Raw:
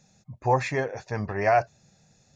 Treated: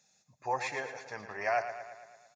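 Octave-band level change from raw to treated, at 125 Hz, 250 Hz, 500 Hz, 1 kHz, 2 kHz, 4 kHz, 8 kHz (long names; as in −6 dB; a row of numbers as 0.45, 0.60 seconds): −23.0 dB, −17.0 dB, −10.5 dB, −8.5 dB, −5.0 dB, −4.0 dB, can't be measured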